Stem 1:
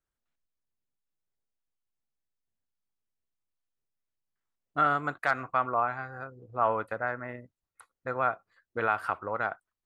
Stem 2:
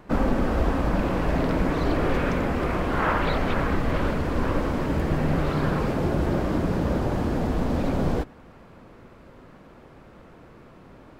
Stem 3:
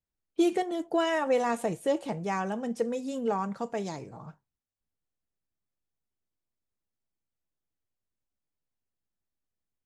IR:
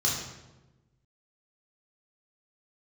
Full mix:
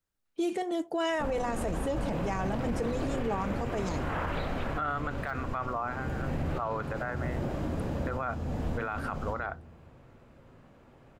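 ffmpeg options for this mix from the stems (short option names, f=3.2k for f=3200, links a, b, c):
-filter_complex "[0:a]deesser=0.95,volume=0dB,asplit=2[a][b];[1:a]equalizer=f=160:w=1.5:g=-2.5,adelay=1100,volume=-8dB,asplit=2[c][d];[d]volume=-17dB[e];[2:a]volume=1dB[f];[b]apad=whole_len=542184[g];[c][g]sidechaincompress=threshold=-33dB:ratio=8:attack=45:release=413[h];[3:a]atrim=start_sample=2205[i];[e][i]afir=irnorm=-1:irlink=0[j];[a][h][f][j]amix=inputs=4:normalize=0,alimiter=limit=-23dB:level=0:latency=1:release=29"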